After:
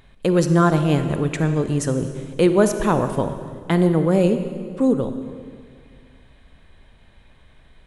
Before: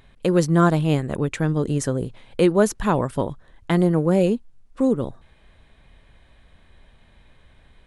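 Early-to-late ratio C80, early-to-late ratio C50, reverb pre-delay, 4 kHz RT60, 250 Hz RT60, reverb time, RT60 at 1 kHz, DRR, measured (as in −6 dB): 9.5 dB, 8.5 dB, 38 ms, 1.7 s, 2.3 s, 2.0 s, 1.9 s, 8.5 dB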